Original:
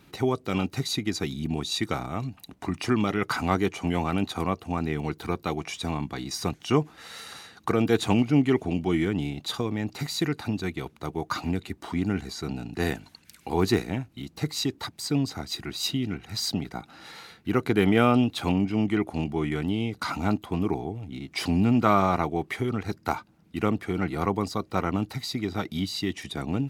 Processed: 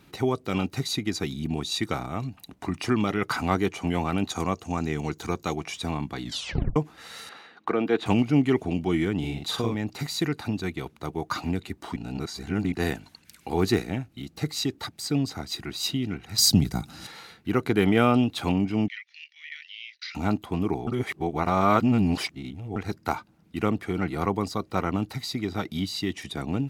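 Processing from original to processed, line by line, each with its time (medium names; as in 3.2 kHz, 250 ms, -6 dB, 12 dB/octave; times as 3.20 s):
4.30–5.56 s: peaking EQ 6.6 kHz +13 dB 0.5 oct
6.22 s: tape stop 0.54 s
7.29–8.06 s: three-band isolator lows -21 dB, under 200 Hz, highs -20 dB, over 3.6 kHz
9.19–9.75 s: doubling 44 ms -2 dB
11.96–12.72 s: reverse
13.48–15.29 s: band-stop 990 Hz, Q 9.3
16.38–17.07 s: tone controls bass +14 dB, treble +14 dB
18.88–20.15 s: Chebyshev band-pass 1.8–5.8 kHz, order 4
20.87–22.76 s: reverse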